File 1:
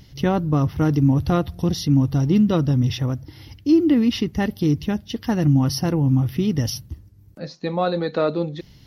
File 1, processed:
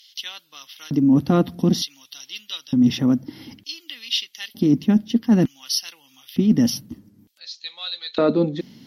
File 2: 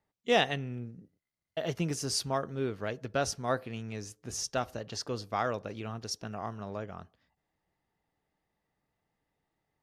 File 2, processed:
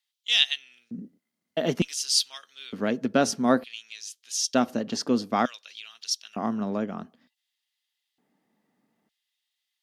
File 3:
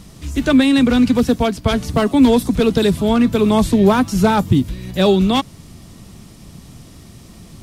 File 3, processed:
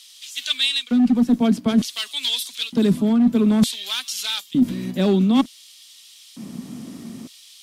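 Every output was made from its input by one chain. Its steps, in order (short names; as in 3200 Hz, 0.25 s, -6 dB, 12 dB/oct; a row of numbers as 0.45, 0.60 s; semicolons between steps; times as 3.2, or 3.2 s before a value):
LFO high-pass square 0.55 Hz 220–3400 Hz; added harmonics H 2 -29 dB, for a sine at -3.5 dBFS; small resonant body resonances 240/3200 Hz, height 6 dB; reverse; compressor 12:1, threshold -14 dBFS; reverse; normalise peaks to -6 dBFS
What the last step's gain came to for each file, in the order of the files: +2.0, +6.0, 0.0 dB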